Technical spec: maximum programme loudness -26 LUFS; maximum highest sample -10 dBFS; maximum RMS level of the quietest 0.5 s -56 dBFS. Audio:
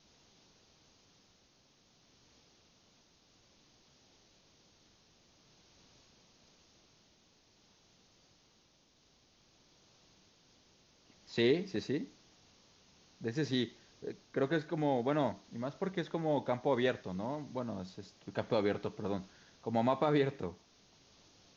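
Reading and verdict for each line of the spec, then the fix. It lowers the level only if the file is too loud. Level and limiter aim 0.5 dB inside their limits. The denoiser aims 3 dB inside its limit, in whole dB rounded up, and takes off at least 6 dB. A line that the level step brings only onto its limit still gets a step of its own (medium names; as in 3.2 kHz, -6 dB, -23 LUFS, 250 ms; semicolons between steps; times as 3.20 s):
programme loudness -35.5 LUFS: pass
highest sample -18.0 dBFS: pass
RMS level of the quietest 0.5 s -69 dBFS: pass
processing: none needed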